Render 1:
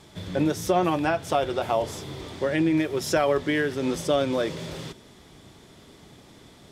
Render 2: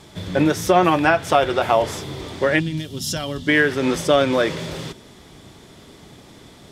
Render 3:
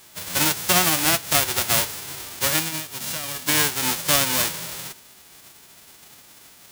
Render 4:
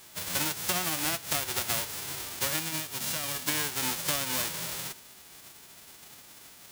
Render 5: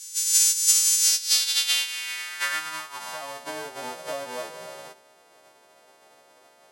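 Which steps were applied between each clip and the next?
time-frequency box 2.59–3.48 s, 290–2700 Hz -15 dB; dynamic bell 1.7 kHz, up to +6 dB, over -41 dBFS, Q 0.77; trim +5.5 dB
formants flattened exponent 0.1; trim -3.5 dB
compression 6:1, threshold -24 dBFS, peak gain reduction 10.5 dB; trim -2.5 dB
partials quantised in pitch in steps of 2 st; band-pass sweep 6.7 kHz -> 580 Hz, 0.96–3.57 s; trim +9 dB

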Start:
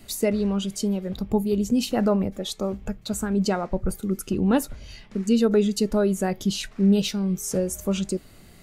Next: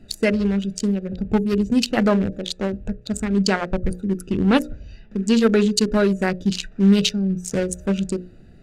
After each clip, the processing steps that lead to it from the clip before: local Wiener filter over 41 samples; high-order bell 3.5 kHz +8.5 dB 2.9 oct; hum notches 60/120/180/240/300/360/420/480/540/600 Hz; trim +4.5 dB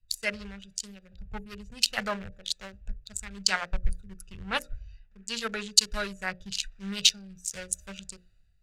amplifier tone stack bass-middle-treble 10-0-10; three bands expanded up and down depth 70%; trim -1.5 dB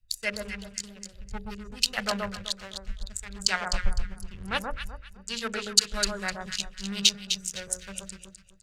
echo whose repeats swap between lows and highs 127 ms, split 1.3 kHz, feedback 51%, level -2 dB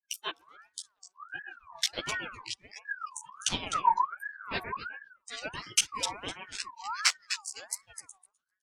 spectral noise reduction 26 dB; chorus voices 2, 1.4 Hz, delay 13 ms, depth 3 ms; ring modulator with a swept carrier 1.3 kHz, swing 30%, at 1.4 Hz; trim +1 dB

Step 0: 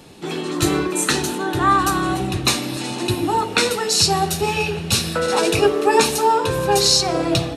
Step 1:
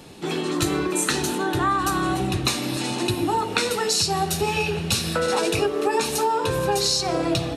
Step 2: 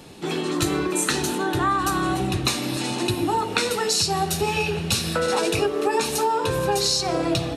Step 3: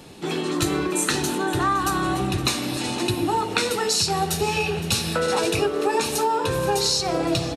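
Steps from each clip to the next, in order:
compression 5:1, threshold -19 dBFS, peak gain reduction 9 dB
no audible change
delay 515 ms -16.5 dB

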